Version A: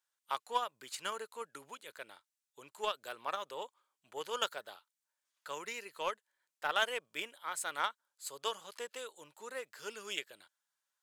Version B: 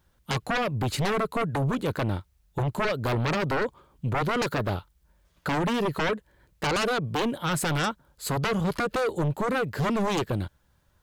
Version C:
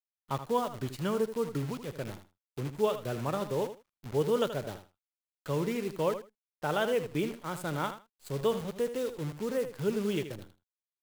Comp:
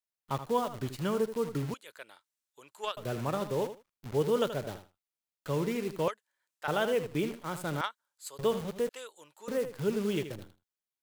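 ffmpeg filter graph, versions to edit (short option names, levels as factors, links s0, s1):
-filter_complex "[0:a]asplit=4[s0][s1][s2][s3];[2:a]asplit=5[s4][s5][s6][s7][s8];[s4]atrim=end=1.742[s9];[s0]atrim=start=1.738:end=2.972[s10];[s5]atrim=start=2.968:end=6.082[s11];[s1]atrim=start=6.078:end=6.682[s12];[s6]atrim=start=6.678:end=7.812[s13];[s2]atrim=start=7.808:end=8.392[s14];[s7]atrim=start=8.388:end=8.892[s15];[s3]atrim=start=8.888:end=9.482[s16];[s8]atrim=start=9.478[s17];[s9][s10]acrossfade=d=0.004:c1=hsin:c2=hsin[s18];[s18][s11]acrossfade=d=0.004:c1=hsin:c2=hsin[s19];[s19][s12]acrossfade=d=0.004:c1=hsin:c2=hsin[s20];[s20][s13]acrossfade=d=0.004:c1=hsin:c2=hsin[s21];[s21][s14]acrossfade=d=0.004:c1=hsin:c2=hsin[s22];[s22][s15]acrossfade=d=0.004:c1=hsin:c2=hsin[s23];[s23][s16]acrossfade=d=0.004:c1=hsin:c2=hsin[s24];[s24][s17]acrossfade=d=0.004:c1=hsin:c2=hsin"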